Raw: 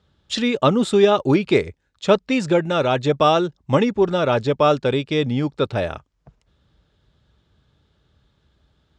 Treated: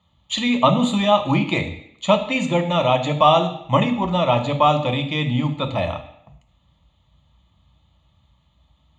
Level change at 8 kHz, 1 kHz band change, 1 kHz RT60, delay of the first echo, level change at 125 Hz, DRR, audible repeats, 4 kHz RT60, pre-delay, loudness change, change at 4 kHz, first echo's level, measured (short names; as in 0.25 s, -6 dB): n/a, +3.5 dB, 0.70 s, none, +2.0 dB, 5.5 dB, none, 0.70 s, 3 ms, 0.0 dB, +2.5 dB, none